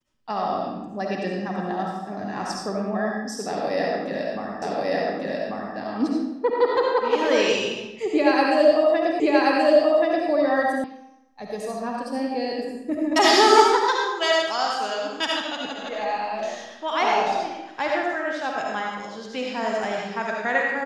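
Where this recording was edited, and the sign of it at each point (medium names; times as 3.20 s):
4.62 s: repeat of the last 1.14 s
9.20 s: repeat of the last 1.08 s
10.84 s: sound stops dead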